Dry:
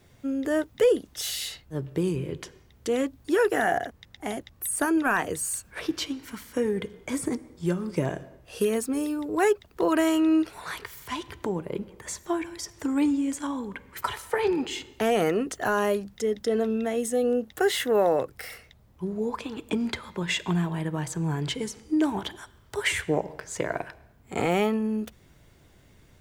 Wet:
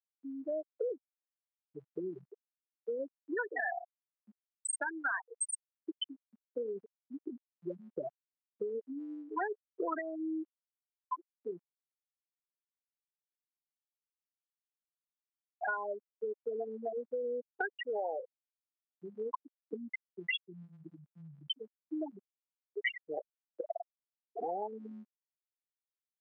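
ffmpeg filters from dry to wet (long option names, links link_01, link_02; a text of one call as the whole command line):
ffmpeg -i in.wav -filter_complex "[0:a]asettb=1/sr,asplit=3[link_01][link_02][link_03];[link_01]atrim=end=9.414[link_04];[link_02]atrim=start=9.41:end=9.99,asetpts=PTS-STARTPTS,afade=type=in:duration=0.004:curve=qsin,afade=type=out:start_time=0.576:duration=0.004:curve=qsin,equalizer=frequency=240:width=1.5:gain=15[link_05];[link_03]atrim=start=9.986[link_06];[link_04][link_05]acrossfade=duration=0.004:curve1=hsin:curve2=qsin[link_07];[link_07][link_06]acrossfade=duration=0.004:curve1=qsin:curve2=hsin,asplit=3[link_08][link_09][link_10];[link_08]atrim=end=11.68,asetpts=PTS-STARTPTS,afade=type=out:start_time=11.676:duration=0.004:curve=hsin[link_11];[link_09]atrim=start=11.68:end=15.47,asetpts=PTS-STARTPTS,volume=0[link_12];[link_10]atrim=start=15.47,asetpts=PTS-STARTPTS,afade=type=in:duration=0.004:curve=hsin[link_13];[link_11][link_12][link_13]concat=n=3:v=0:a=1,afftfilt=real='re*gte(hypot(re,im),0.251)':imag='im*gte(hypot(re,im),0.251)':win_size=1024:overlap=0.75,highpass=1300,acompressor=threshold=-48dB:ratio=5,volume=13.5dB" out.wav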